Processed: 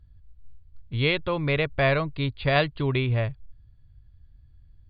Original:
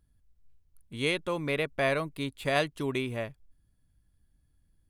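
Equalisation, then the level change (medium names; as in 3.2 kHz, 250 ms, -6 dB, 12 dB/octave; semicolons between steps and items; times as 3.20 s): brick-wall FIR low-pass 4.8 kHz; resonant low shelf 150 Hz +10 dB, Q 1.5; +5.0 dB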